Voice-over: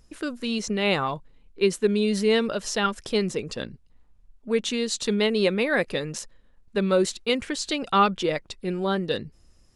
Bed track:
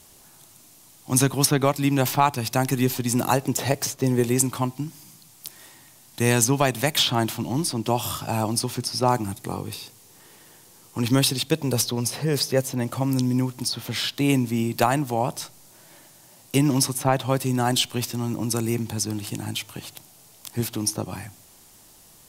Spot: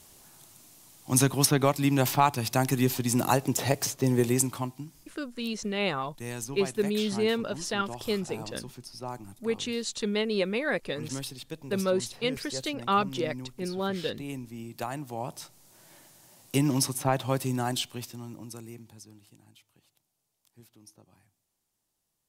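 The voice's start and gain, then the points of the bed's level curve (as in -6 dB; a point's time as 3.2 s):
4.95 s, -5.5 dB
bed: 4.3 s -3 dB
5.29 s -17 dB
14.55 s -17 dB
15.88 s -5 dB
17.45 s -5 dB
19.54 s -29 dB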